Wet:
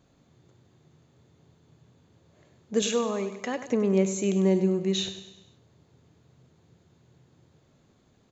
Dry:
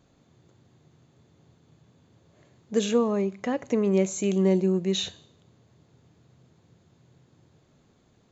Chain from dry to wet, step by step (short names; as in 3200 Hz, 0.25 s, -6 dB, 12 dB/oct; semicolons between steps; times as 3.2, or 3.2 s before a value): 2.82–3.68 tilt +2.5 dB/oct; feedback echo 99 ms, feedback 51%, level -11.5 dB; gain -1 dB